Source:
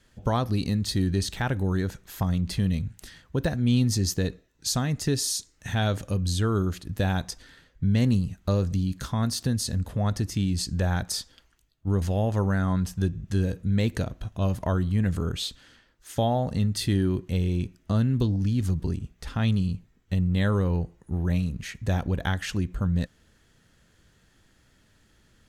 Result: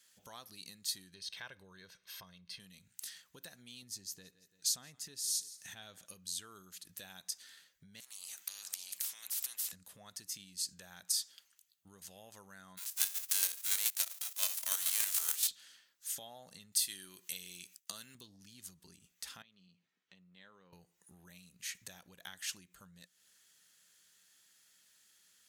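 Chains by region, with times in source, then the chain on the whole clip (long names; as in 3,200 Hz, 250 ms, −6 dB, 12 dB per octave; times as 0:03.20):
0:01.14–0:02.60: Savitzky-Golay smoothing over 15 samples + comb filter 1.9 ms, depth 45%
0:03.82–0:06.06: spectral tilt −1.5 dB per octave + repeating echo 169 ms, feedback 29%, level −21 dB
0:08.00–0:09.72: downward compressor 5 to 1, threshold −28 dBFS + every bin compressed towards the loudest bin 10 to 1
0:12.77–0:15.47: spectral envelope flattened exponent 0.3 + high-pass filter 440 Hz + square-wave tremolo 7 Hz, depth 60%, duty 30%
0:16.72–0:18.15: downward expander −50 dBFS + spectral tilt +2.5 dB per octave + one half of a high-frequency compander encoder only
0:19.42–0:20.73: high-pass filter 160 Hz + downward compressor 2.5 to 1, threshold −48 dBFS + high-frequency loss of the air 190 metres
whole clip: parametric band 180 Hz +7.5 dB 0.28 octaves; downward compressor 5 to 1, threshold −31 dBFS; first difference; level +4 dB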